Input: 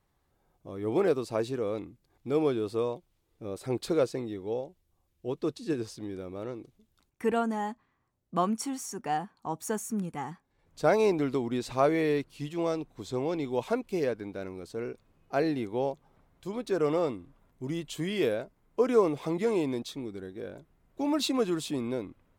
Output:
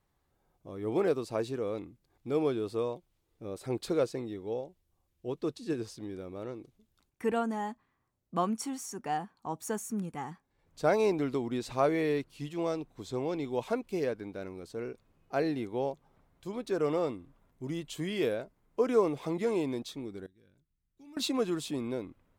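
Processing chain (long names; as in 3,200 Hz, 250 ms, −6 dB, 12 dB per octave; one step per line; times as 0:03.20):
0:20.26–0:21.17: guitar amp tone stack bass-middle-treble 6-0-2
level −2.5 dB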